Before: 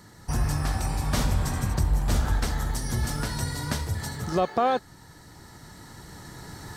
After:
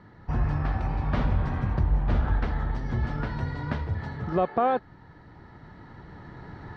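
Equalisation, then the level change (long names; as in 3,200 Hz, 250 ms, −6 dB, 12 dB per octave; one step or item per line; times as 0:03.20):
Bessel low-pass filter 2,000 Hz, order 4
0.0 dB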